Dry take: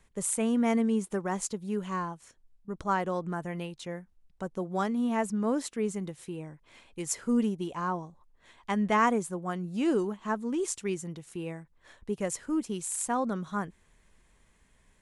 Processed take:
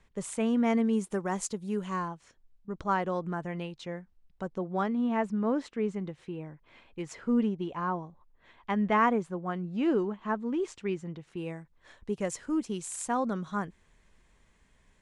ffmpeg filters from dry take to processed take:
-af "asetnsamples=n=441:p=0,asendcmd='0.93 lowpass f 10000;2.08 lowpass f 5100;4.58 lowpass f 3100;11.37 lowpass f 7400',lowpass=5.3k"

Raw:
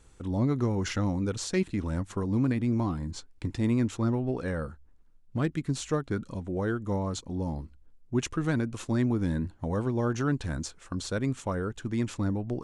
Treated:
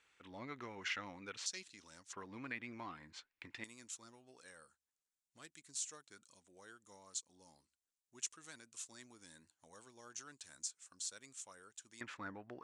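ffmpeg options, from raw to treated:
-af "asetnsamples=n=441:p=0,asendcmd='1.46 bandpass f 5900;2.13 bandpass f 2200;3.64 bandpass f 7700;12.01 bandpass f 1700',bandpass=f=2.3k:t=q:w=1.8:csg=0"

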